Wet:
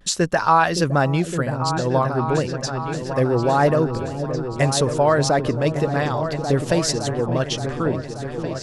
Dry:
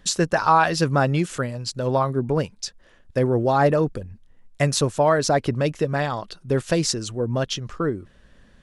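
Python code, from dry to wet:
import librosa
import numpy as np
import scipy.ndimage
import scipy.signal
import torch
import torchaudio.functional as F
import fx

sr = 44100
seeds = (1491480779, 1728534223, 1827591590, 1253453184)

y = fx.echo_opening(x, sr, ms=571, hz=400, octaves=2, feedback_pct=70, wet_db=-6)
y = fx.vibrato(y, sr, rate_hz=0.35, depth_cents=25.0)
y = y * 10.0 ** (1.0 / 20.0)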